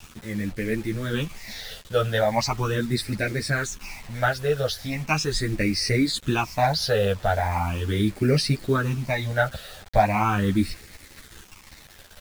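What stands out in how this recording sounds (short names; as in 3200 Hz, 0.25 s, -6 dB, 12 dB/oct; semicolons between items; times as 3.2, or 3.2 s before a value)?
phasing stages 8, 0.39 Hz, lowest notch 290–1000 Hz; a quantiser's noise floor 8-bit, dither none; a shimmering, thickened sound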